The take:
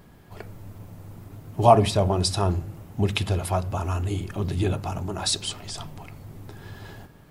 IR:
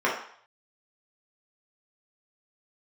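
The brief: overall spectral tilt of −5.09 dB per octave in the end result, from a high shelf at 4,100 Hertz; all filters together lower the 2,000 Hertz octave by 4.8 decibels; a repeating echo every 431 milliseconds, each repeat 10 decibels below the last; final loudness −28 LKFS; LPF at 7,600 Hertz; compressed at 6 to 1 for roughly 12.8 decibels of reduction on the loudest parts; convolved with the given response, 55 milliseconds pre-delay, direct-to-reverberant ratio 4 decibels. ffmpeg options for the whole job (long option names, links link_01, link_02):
-filter_complex "[0:a]lowpass=7600,equalizer=frequency=2000:width_type=o:gain=-8.5,highshelf=frequency=4100:gain=5.5,acompressor=threshold=-24dB:ratio=6,aecho=1:1:431|862|1293|1724:0.316|0.101|0.0324|0.0104,asplit=2[link_01][link_02];[1:a]atrim=start_sample=2205,adelay=55[link_03];[link_02][link_03]afir=irnorm=-1:irlink=0,volume=-19.5dB[link_04];[link_01][link_04]amix=inputs=2:normalize=0,volume=1.5dB"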